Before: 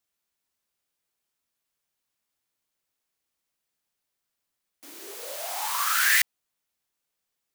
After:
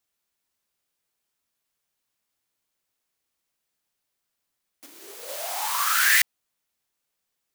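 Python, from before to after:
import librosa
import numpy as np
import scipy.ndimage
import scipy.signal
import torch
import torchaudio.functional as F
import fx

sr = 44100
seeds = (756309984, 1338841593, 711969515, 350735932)

y = fx.power_curve(x, sr, exponent=1.4, at=(4.86, 5.29))
y = y * librosa.db_to_amplitude(2.0)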